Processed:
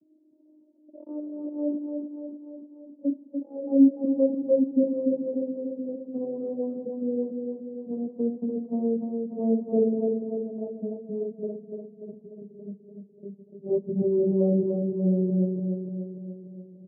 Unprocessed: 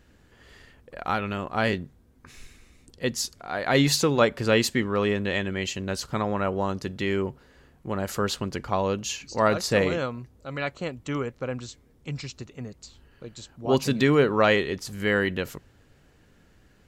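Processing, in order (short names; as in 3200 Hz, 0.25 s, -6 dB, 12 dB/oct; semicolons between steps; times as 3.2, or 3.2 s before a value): vocoder on a gliding note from D#4, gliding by -10 st; steep low-pass 560 Hz 36 dB/oct; feedback echo 0.293 s, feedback 58%, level -5 dB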